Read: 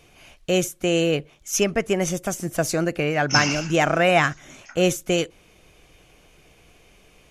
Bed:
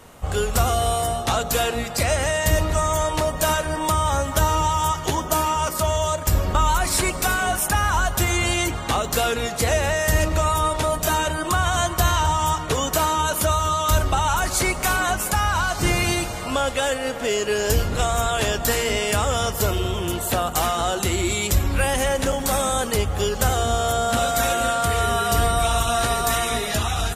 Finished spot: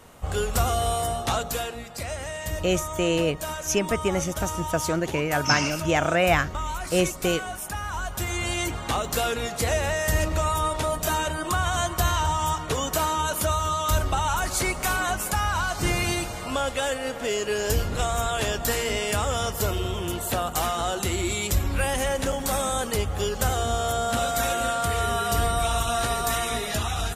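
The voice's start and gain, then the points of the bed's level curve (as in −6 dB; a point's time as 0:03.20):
2.15 s, −3.0 dB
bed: 0:01.35 −3.5 dB
0:01.78 −11.5 dB
0:07.83 −11.5 dB
0:08.75 −4 dB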